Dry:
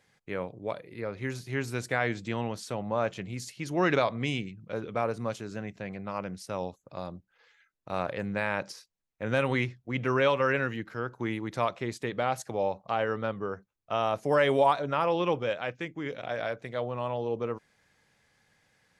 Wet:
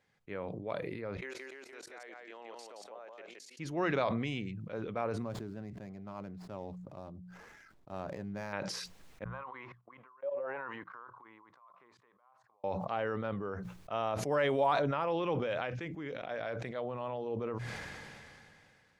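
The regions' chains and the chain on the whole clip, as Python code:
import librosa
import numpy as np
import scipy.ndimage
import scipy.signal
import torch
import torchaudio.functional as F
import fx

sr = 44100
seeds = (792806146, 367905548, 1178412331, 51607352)

y = fx.chain(x, sr, fx.highpass(hz=390.0, slope=24),
    fx.level_steps(step_db=22),
    fx.echo_single(ms=172, db=-3.5), at=(1.17, 3.59))
y = fx.chain(y, sr, fx.median_filter(points=15),
    fx.peak_eq(hz=1900.0, db=-6.0, octaves=2.7),
    fx.notch(hz=500.0, q=7.7), at=(5.22, 8.53))
y = fx.chain(y, sr, fx.level_steps(step_db=23),
    fx.auto_wah(base_hz=590.0, top_hz=1200.0, q=10.0, full_db=-27.5, direction='down'), at=(9.24, 12.64))
y = fx.lowpass(y, sr, hz=3700.0, slope=6)
y = fx.hum_notches(y, sr, base_hz=60, count=3)
y = fx.sustainer(y, sr, db_per_s=23.0)
y = y * librosa.db_to_amplitude(-6.5)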